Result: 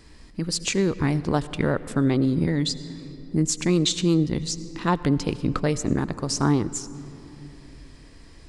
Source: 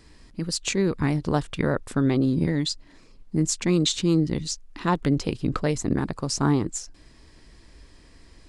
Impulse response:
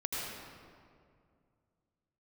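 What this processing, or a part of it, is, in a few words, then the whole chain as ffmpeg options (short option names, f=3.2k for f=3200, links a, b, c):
ducked reverb: -filter_complex "[0:a]asplit=3[a][b][c];[1:a]atrim=start_sample=2205[d];[b][d]afir=irnorm=-1:irlink=0[e];[c]apad=whole_len=374194[f];[e][f]sidechaincompress=threshold=-27dB:ratio=10:attack=24:release=1340,volume=-9dB[g];[a][g]amix=inputs=2:normalize=0"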